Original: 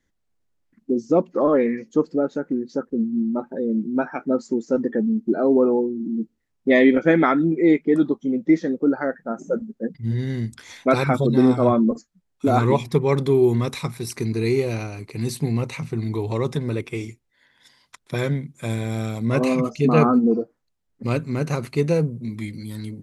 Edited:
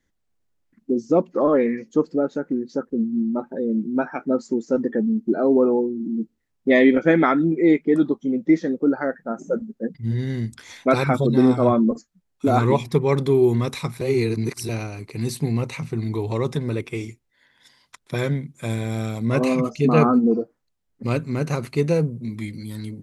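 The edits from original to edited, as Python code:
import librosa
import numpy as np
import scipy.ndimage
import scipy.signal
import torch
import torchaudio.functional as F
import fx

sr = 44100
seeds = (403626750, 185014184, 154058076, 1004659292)

y = fx.edit(x, sr, fx.reverse_span(start_s=14.01, length_s=0.68), tone=tone)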